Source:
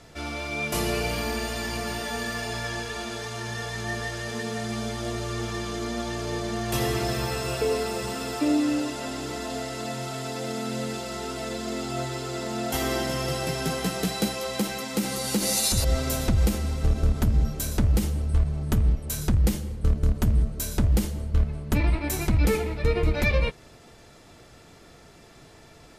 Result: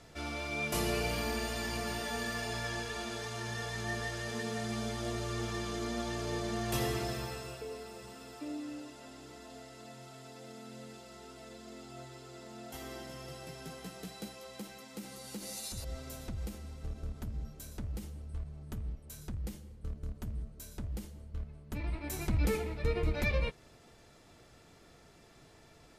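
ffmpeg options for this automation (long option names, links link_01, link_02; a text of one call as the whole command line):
ffmpeg -i in.wav -af "volume=3.5dB,afade=type=out:start_time=6.68:duration=0.95:silence=0.251189,afade=type=in:start_time=21.67:duration=0.69:silence=0.334965" out.wav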